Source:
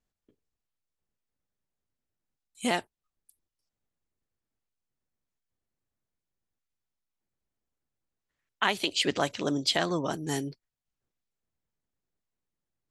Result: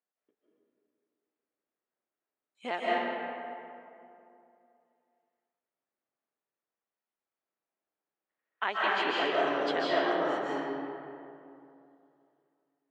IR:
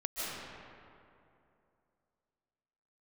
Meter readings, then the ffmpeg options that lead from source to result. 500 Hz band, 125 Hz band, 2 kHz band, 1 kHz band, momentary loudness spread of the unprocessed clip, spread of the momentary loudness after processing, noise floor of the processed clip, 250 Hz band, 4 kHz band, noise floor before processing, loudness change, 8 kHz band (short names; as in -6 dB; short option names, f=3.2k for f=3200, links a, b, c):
+3.0 dB, -15.0 dB, +1.5 dB, +3.5 dB, 7 LU, 17 LU, under -85 dBFS, -3.5 dB, -6.5 dB, under -85 dBFS, -1.5 dB, under -20 dB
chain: -filter_complex "[0:a]highpass=420,lowpass=2.2k[a];[1:a]atrim=start_sample=2205[b];[a][b]afir=irnorm=-1:irlink=0,volume=-1.5dB"